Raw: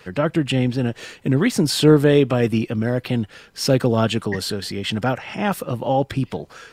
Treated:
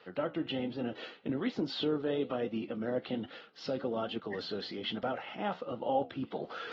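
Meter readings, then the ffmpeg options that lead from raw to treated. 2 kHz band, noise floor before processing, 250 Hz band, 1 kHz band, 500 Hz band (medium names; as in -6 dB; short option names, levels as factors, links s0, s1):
-15.5 dB, -51 dBFS, -15.5 dB, -11.5 dB, -14.0 dB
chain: -af "aemphasis=mode=reproduction:type=50fm,areverse,acompressor=mode=upward:threshold=0.112:ratio=2.5,areverse,alimiter=limit=0.316:level=0:latency=1:release=383,flanger=delay=8.5:depth=8.3:regen=-71:speed=1.2:shape=triangular,highpass=350,equalizer=f=400:t=q:w=4:g=-5,equalizer=f=610:t=q:w=4:g=-3,equalizer=f=990:t=q:w=4:g=-7,equalizer=f=1700:t=q:w=4:g=-9,equalizer=f=2400:t=q:w=4:g=-9,lowpass=f=4100:w=0.5412,lowpass=f=4100:w=1.3066,volume=0.75" -ar 48000 -c:a aac -b:a 24k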